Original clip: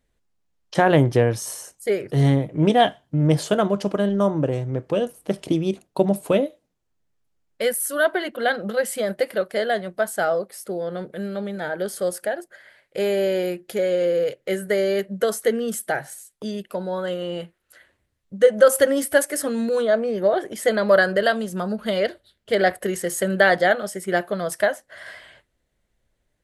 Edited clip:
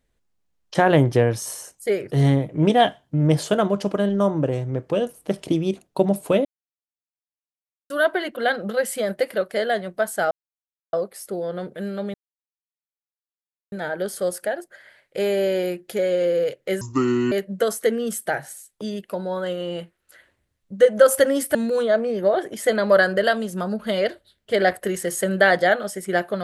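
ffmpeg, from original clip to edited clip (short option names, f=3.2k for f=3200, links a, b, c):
-filter_complex "[0:a]asplit=8[a][b][c][d][e][f][g][h];[a]atrim=end=6.45,asetpts=PTS-STARTPTS,afade=t=out:st=6.446:d=0.004:c=hsin[i];[b]atrim=start=6.45:end=7.9,asetpts=PTS-STARTPTS,volume=0[j];[c]atrim=start=7.9:end=10.31,asetpts=PTS-STARTPTS,afade=t=in:d=0.004:c=hsin,afade=t=out:st=2.406:d=0.004:c=hsin,apad=pad_dur=0.62[k];[d]atrim=start=10.31:end=11.52,asetpts=PTS-STARTPTS,afade=t=in:d=0.004:c=hsin,afade=t=out:st=1.206:d=0.004:c=hsin,apad=pad_dur=1.58[l];[e]atrim=start=11.52:end=14.614,asetpts=PTS-STARTPTS,afade=t=in:d=0.004:c=hsin[m];[f]atrim=start=14.61:end=14.93,asetpts=PTS-STARTPTS,asetrate=27783,aresample=44100[n];[g]atrim=start=14.926:end=19.162[o];[h]atrim=start=19.538[p];[i][j][k][l][m]concat=n=5:v=0:a=1[q];[q][n]acrossfade=d=0.004:c1=hsin:c2=hsin[r];[r][o]acrossfade=d=0.004:c1=hsin:c2=hsin[s];[s][p]acrossfade=d=0.004:c1=hsin:c2=hsin"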